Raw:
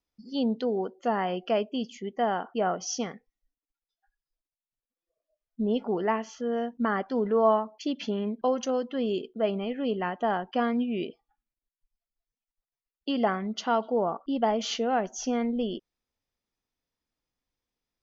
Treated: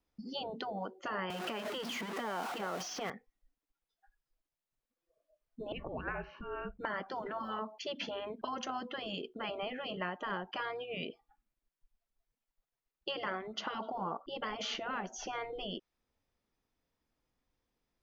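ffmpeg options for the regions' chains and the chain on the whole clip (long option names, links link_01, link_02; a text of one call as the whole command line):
ffmpeg -i in.wav -filter_complex "[0:a]asettb=1/sr,asplit=3[link_01][link_02][link_03];[link_01]atrim=end=1.304[link_04];[link_02]atrim=start=1.3:end=3.1,asetpts=PTS-STARTPTS,afade=type=in:duration=0.004:curve=qsin,afade=type=out:start_time=1.796:duration=0.004:curve=qsin,aeval=exprs='val(0)+0.5*0.0211*sgn(val(0))':channel_layout=same,highpass=frequency=160:width=0.5412,highpass=frequency=160:width=1.3066,acompressor=threshold=-27dB:ratio=5:attack=3.2:release=140:knee=1:detection=peak[link_05];[link_03]atrim=start=3.096[link_06];[link_04][link_05]acrossfade=duration=0.004:curve1=hsin:curve2=qsin[link_07];[link_07][link_06]acrossfade=duration=0.004:curve1=qsin:curve2=hsin,asettb=1/sr,asplit=3[link_08][link_09][link_10];[link_08]atrim=end=5.724[link_11];[link_09]atrim=start=5.72:end=6.79,asetpts=PTS-STARTPTS,afade=type=in:duration=0.004:curve=qsin,afade=type=out:start_time=1.066:duration=0.004:curve=qsin,lowpass=frequency=2700:width=0.5412,lowpass=frequency=2700:width=1.3066,afreqshift=-270[link_12];[link_10]atrim=start=6.786[link_13];[link_11][link_12]acrossfade=duration=0.004:curve1=hsin:curve2=qsin[link_14];[link_14][link_13]acrossfade=duration=0.004:curve1=qsin:curve2=hsin,afftfilt=real='re*lt(hypot(re,im),0.178)':imag='im*lt(hypot(re,im),0.178)':win_size=1024:overlap=0.75,highshelf=frequency=2700:gain=-9,acrossover=split=720|3400[link_15][link_16][link_17];[link_15]acompressor=threshold=-49dB:ratio=4[link_18];[link_16]acompressor=threshold=-44dB:ratio=4[link_19];[link_17]acompressor=threshold=-54dB:ratio=4[link_20];[link_18][link_19][link_20]amix=inputs=3:normalize=0,volume=6dB" out.wav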